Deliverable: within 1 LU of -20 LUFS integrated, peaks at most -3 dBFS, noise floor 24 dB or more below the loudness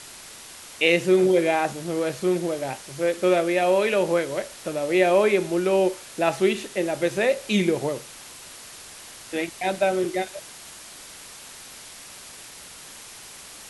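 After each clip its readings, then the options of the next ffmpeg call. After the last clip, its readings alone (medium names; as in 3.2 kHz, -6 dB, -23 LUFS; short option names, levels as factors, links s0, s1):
noise floor -43 dBFS; noise floor target -47 dBFS; loudness -23.0 LUFS; peak level -4.5 dBFS; loudness target -20.0 LUFS
-> -af "afftdn=nr=6:nf=-43"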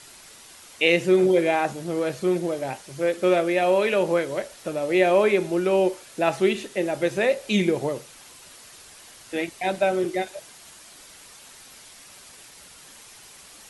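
noise floor -48 dBFS; loudness -23.0 LUFS; peak level -4.5 dBFS; loudness target -20.0 LUFS
-> -af "volume=1.41,alimiter=limit=0.708:level=0:latency=1"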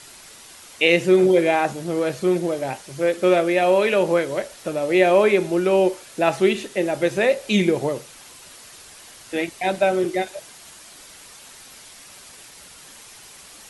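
loudness -20.0 LUFS; peak level -3.0 dBFS; noise floor -45 dBFS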